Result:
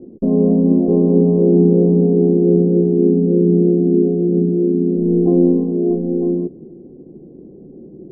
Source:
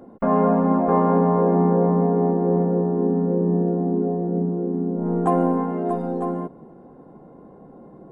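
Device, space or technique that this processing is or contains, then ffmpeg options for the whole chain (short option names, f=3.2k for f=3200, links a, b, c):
under water: -af "lowpass=f=420:w=0.5412,lowpass=f=420:w=1.3066,equalizer=f=360:t=o:w=0.36:g=7.5,volume=6dB"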